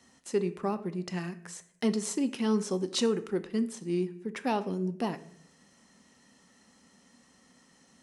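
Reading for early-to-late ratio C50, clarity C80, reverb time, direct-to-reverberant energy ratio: 15.5 dB, 18.5 dB, 0.65 s, 11.0 dB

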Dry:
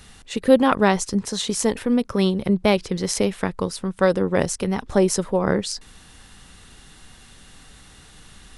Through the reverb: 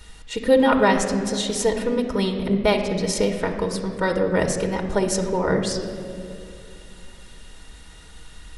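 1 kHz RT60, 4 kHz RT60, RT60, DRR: 2.0 s, 1.4 s, 2.5 s, 1.5 dB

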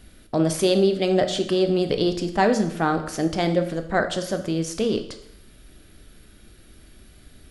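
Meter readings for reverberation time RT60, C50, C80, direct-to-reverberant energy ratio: 0.75 s, 10.5 dB, 13.0 dB, 7.0 dB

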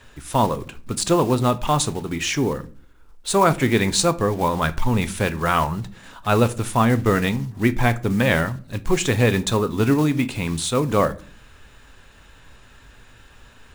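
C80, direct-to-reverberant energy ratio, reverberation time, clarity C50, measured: 24.5 dB, 11.5 dB, 0.45 s, 19.0 dB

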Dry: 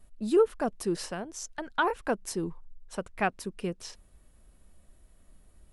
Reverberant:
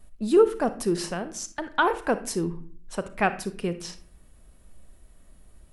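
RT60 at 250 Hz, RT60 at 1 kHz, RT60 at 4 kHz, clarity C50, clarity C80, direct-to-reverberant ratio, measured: 0.80 s, 0.40 s, 0.35 s, 12.5 dB, 17.5 dB, 11.0 dB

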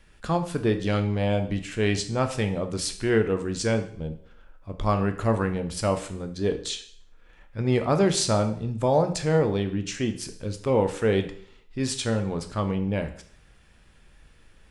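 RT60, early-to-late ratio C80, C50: 0.55 s, 15.5 dB, 11.5 dB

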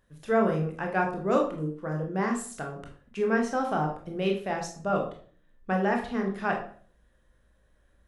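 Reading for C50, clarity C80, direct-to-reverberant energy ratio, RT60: 7.0 dB, 11.5 dB, 1.0 dB, 0.45 s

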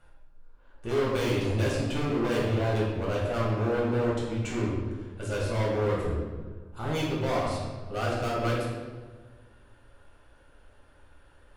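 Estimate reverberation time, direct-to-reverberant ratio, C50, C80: 1.4 s, -7.0 dB, 0.0 dB, 3.0 dB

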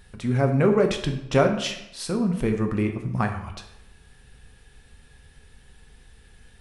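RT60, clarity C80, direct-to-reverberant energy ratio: 0.85 s, 11.0 dB, 4.0 dB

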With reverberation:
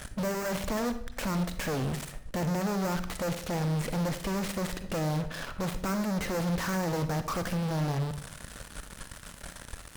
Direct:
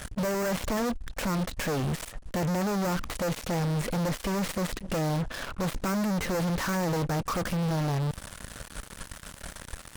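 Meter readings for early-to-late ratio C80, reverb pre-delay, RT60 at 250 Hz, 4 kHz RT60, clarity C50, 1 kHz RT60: 14.5 dB, 39 ms, 0.70 s, 0.45 s, 11.0 dB, 0.55 s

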